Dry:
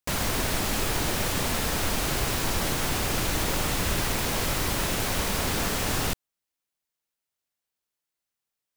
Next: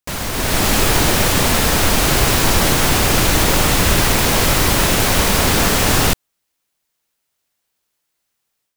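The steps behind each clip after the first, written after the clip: level rider gain up to 10.5 dB; trim +2.5 dB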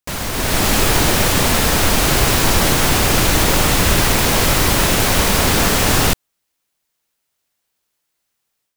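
no audible change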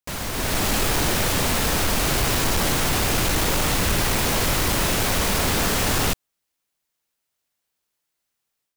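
overload inside the chain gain 11 dB; trim -5.5 dB

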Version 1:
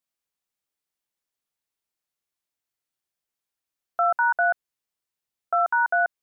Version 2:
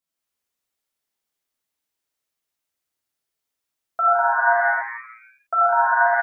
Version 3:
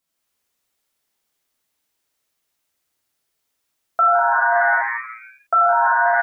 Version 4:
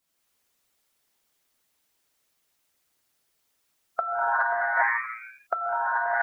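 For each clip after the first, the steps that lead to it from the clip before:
frequency-shifting echo 81 ms, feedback 63%, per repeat +120 Hz, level -10 dB; gated-style reverb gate 310 ms flat, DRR -5.5 dB; trim -2.5 dB
peak limiter -17 dBFS, peak gain reduction 10 dB; trim +8 dB
compressor with a negative ratio -19 dBFS, ratio -0.5; harmonic-percussive split harmonic -6 dB

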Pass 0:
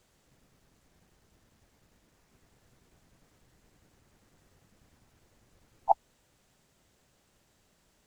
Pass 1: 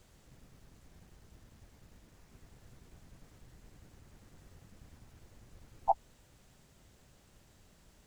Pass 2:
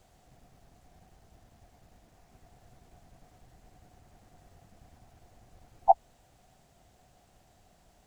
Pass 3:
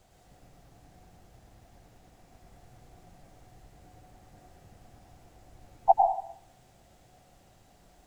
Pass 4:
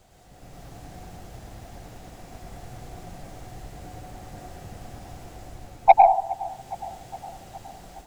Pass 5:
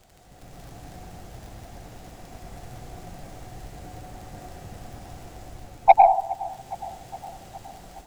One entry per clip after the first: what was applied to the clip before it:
bass shelf 160 Hz +9 dB; peak limiter -19.5 dBFS, peak gain reduction 11 dB; trim +3 dB
peaking EQ 720 Hz +15 dB 0.33 oct; trim -1.5 dB
plate-style reverb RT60 0.58 s, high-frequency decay 0.9×, pre-delay 90 ms, DRR -0.5 dB
level rider gain up to 9 dB; saturation -8 dBFS, distortion -15 dB; feedback echo behind a band-pass 414 ms, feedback 66%, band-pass 710 Hz, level -18.5 dB; trim +5 dB
crackle 49 per s -37 dBFS

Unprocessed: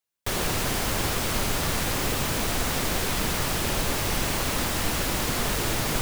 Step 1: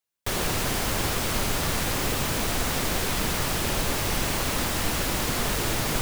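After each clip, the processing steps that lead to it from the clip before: no audible change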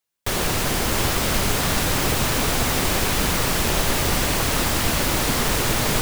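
two-band feedback delay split 580 Hz, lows 405 ms, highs 660 ms, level -6 dB; trim +4 dB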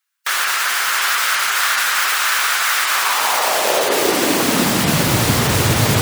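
spectral gate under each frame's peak -30 dB strong; high-pass sweep 1.4 kHz -> 100 Hz, 2.85–5.28 s; trim +5 dB

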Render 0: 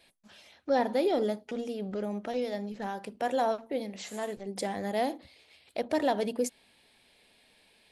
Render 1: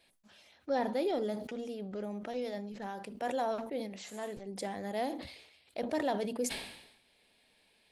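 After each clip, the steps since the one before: decay stretcher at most 65 dB/s; trim -5.5 dB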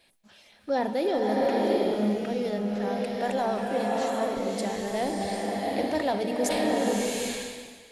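swelling reverb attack 770 ms, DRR -2.5 dB; trim +5 dB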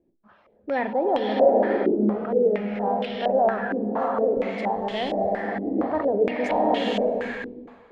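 step-sequenced low-pass 4.3 Hz 340–3100 Hz

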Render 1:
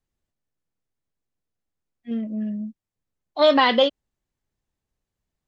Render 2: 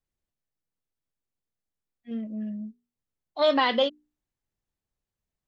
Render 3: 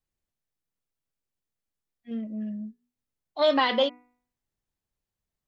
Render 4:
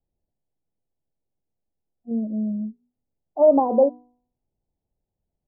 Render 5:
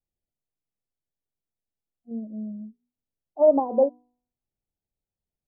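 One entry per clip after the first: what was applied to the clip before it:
hum notches 60/120/180/240/300/360/420 Hz; trim -5.5 dB
de-hum 245.8 Hz, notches 11
steep low-pass 850 Hz 48 dB/octave; trim +7.5 dB
upward expansion 1.5:1, over -28 dBFS; trim -1.5 dB

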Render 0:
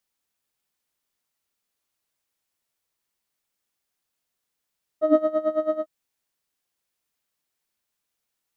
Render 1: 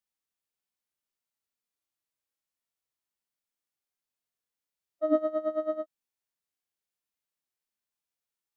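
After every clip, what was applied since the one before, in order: harmonic-percussive split percussive -15 dB; trim -6 dB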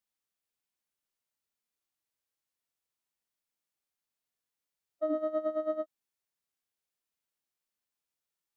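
peak limiter -23 dBFS, peak gain reduction 9.5 dB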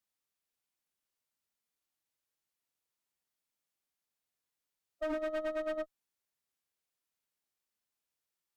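one-sided clip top -36 dBFS, bottom -28.5 dBFS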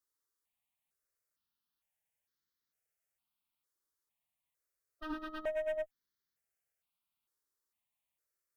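stepped phaser 2.2 Hz 700–2600 Hz; trim +1.5 dB

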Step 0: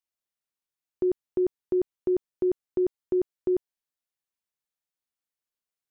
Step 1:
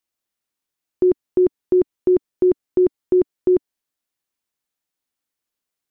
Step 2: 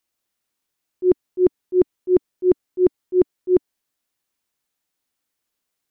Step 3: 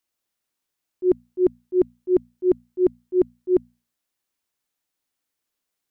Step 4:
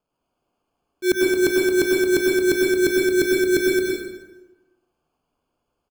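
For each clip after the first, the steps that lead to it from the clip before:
peaking EQ 290 Hz +4.5 dB 0.62 oct; trim +7 dB
slow attack 118 ms; trim +4.5 dB
hum notches 60/120/180/240 Hz; trim -2.5 dB
sample-and-hold 23×; loudspeakers at several distances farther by 38 m -12 dB, 76 m -5 dB; plate-style reverb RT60 1.1 s, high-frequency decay 0.7×, pre-delay 85 ms, DRR -3 dB; trim -1 dB

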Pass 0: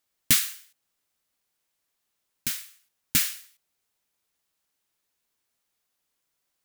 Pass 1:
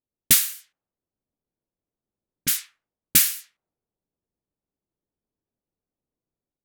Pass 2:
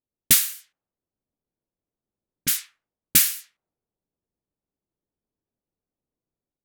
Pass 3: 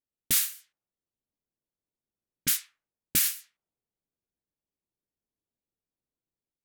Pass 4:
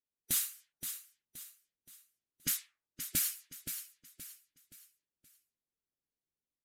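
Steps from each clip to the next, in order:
level-controlled noise filter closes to 390 Hz, open at -26.5 dBFS; treble shelf 7.8 kHz +9.5 dB; level rider gain up to 5 dB
no audible change
peak limiter -12 dBFS, peak gain reduction 10.5 dB; upward expansion 1.5:1, over -34 dBFS
coarse spectral quantiser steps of 15 dB; on a send: feedback delay 523 ms, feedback 38%, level -9 dB; on the sum: resampled via 32 kHz; trim -6 dB

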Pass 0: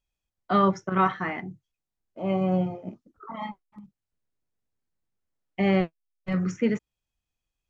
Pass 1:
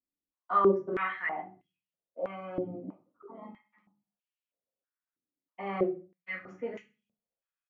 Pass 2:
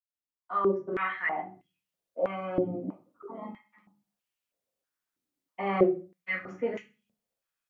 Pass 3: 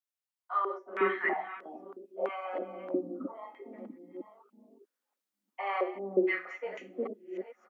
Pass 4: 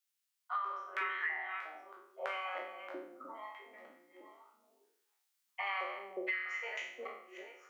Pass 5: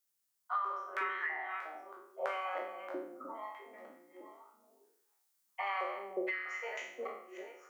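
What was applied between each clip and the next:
feedback delay 65 ms, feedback 32%, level -18 dB; simulated room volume 120 m³, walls furnished, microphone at 1.8 m; step-sequenced band-pass 3.1 Hz 290–2800 Hz
fade-in on the opening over 1.79 s; trim +6 dB
chunks repeated in reverse 643 ms, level -12 dB; Chebyshev high-pass 240 Hz, order 4; bands offset in time highs, lows 360 ms, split 510 Hz
spectral sustain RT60 0.65 s; Bessel high-pass 1.8 kHz, order 2; compression 10:1, threshold -40 dBFS, peak gain reduction 13.5 dB; trim +6.5 dB
peaking EQ 2.8 kHz -8.5 dB 1.8 oct; trim +5 dB

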